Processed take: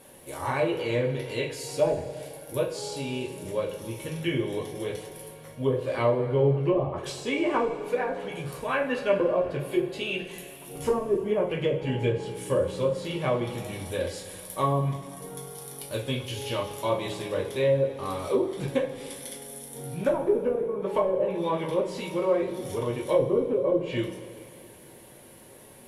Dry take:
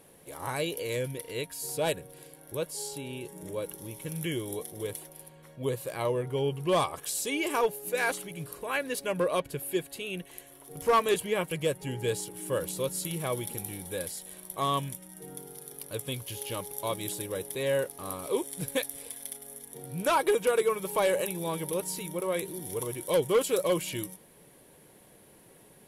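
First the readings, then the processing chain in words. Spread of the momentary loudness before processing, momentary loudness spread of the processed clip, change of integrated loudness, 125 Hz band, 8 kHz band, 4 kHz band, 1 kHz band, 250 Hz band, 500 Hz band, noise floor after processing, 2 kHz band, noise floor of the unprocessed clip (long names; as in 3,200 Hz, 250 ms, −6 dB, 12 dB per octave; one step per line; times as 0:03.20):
14 LU, 13 LU, +3.0 dB, +6.5 dB, −6.5 dB, −0.5 dB, +0.5 dB, +6.0 dB, +4.5 dB, −49 dBFS, 0.0 dB, −56 dBFS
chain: treble cut that deepens with the level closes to 380 Hz, closed at −22.5 dBFS
coupled-rooms reverb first 0.31 s, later 2.6 s, from −17 dB, DRR −2 dB
level +2.5 dB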